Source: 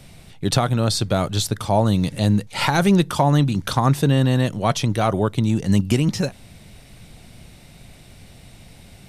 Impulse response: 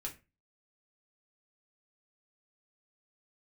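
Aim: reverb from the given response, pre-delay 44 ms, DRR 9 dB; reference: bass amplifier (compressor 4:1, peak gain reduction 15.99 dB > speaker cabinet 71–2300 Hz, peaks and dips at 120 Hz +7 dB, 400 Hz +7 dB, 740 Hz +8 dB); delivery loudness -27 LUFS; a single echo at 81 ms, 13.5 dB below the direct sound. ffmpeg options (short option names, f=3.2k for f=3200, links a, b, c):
-filter_complex "[0:a]aecho=1:1:81:0.211,asplit=2[a][b];[1:a]atrim=start_sample=2205,adelay=44[c];[b][c]afir=irnorm=-1:irlink=0,volume=-7.5dB[d];[a][d]amix=inputs=2:normalize=0,acompressor=threshold=-30dB:ratio=4,highpass=f=71:w=0.5412,highpass=f=71:w=1.3066,equalizer=f=120:t=q:w=4:g=7,equalizer=f=400:t=q:w=4:g=7,equalizer=f=740:t=q:w=4:g=8,lowpass=f=2.3k:w=0.5412,lowpass=f=2.3k:w=1.3066,volume=2dB"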